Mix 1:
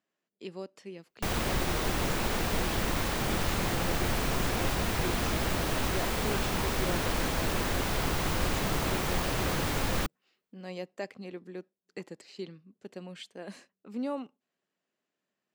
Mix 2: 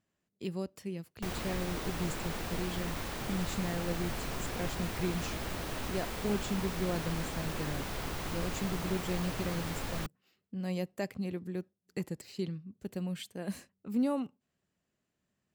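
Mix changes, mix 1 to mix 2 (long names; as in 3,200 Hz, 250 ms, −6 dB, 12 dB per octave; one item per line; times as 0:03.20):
speech: remove band-pass filter 310–6,200 Hz
background −8.0 dB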